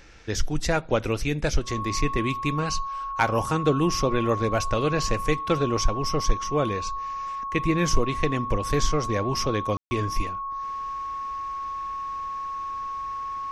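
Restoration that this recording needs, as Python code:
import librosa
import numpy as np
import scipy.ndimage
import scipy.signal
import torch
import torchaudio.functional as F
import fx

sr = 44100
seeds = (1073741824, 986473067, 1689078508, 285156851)

y = fx.fix_declip(x, sr, threshold_db=-9.0)
y = fx.notch(y, sr, hz=1100.0, q=30.0)
y = fx.fix_ambience(y, sr, seeds[0], print_start_s=0.0, print_end_s=0.5, start_s=9.77, end_s=9.91)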